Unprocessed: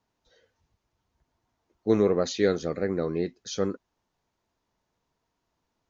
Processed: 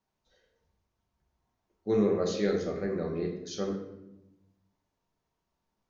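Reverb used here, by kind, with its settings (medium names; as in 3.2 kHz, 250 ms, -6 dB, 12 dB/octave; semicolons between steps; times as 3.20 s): simulated room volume 310 m³, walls mixed, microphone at 1.1 m; trim -7.5 dB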